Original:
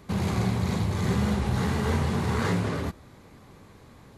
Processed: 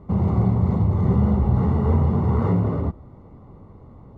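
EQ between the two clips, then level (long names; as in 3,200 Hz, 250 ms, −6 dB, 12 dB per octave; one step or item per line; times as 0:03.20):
Savitzky-Golay smoothing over 65 samples
low-shelf EQ 150 Hz +7.5 dB
+3.0 dB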